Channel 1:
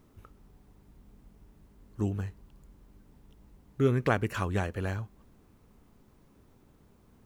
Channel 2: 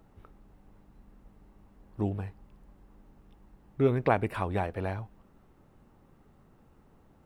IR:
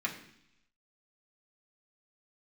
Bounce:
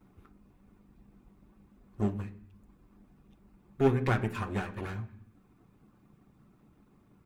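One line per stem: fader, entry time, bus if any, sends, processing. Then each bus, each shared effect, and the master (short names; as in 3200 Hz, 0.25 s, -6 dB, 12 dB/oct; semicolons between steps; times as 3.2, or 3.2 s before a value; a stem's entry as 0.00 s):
-6.5 dB, 0.00 s, send -4.5 dB, upward expander 1.5:1, over -38 dBFS
-6.0 dB, 6.3 ms, polarity flipped, send -8 dB, minimum comb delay 0.82 ms; reverb removal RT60 0.71 s; bell 200 Hz +8 dB 2.7 oct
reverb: on, RT60 0.70 s, pre-delay 3 ms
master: dry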